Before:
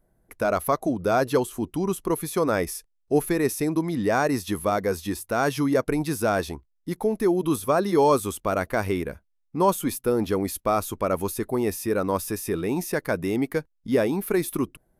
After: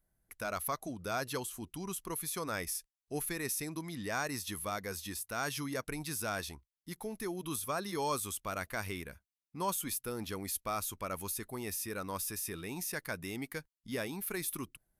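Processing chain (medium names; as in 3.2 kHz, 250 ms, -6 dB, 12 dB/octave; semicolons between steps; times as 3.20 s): amplifier tone stack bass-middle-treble 5-5-5; trim +2.5 dB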